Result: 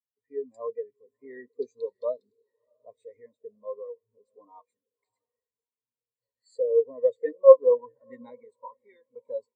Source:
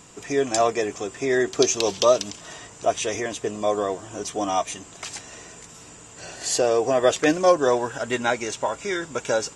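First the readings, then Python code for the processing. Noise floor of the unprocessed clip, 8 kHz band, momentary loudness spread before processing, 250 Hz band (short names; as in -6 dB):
-45 dBFS, under -40 dB, 19 LU, under -20 dB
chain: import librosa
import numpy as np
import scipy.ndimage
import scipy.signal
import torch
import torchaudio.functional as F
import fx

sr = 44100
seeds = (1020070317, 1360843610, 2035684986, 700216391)

y = fx.ripple_eq(x, sr, per_octave=0.97, db=14)
y = fx.echo_diffused(y, sr, ms=666, feedback_pct=43, wet_db=-14.0)
y = fx.spectral_expand(y, sr, expansion=2.5)
y = y * librosa.db_to_amplitude(-1.0)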